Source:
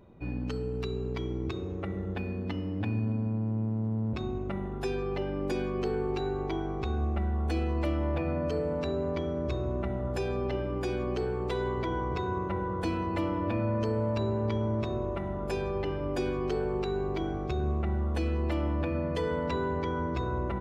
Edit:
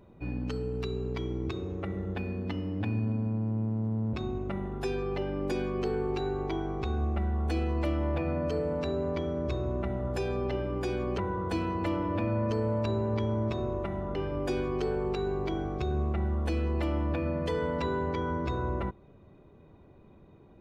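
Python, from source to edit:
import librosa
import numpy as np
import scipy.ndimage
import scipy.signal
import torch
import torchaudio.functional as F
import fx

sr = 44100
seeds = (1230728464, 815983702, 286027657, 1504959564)

y = fx.edit(x, sr, fx.cut(start_s=11.18, length_s=1.32),
    fx.cut(start_s=15.47, length_s=0.37), tone=tone)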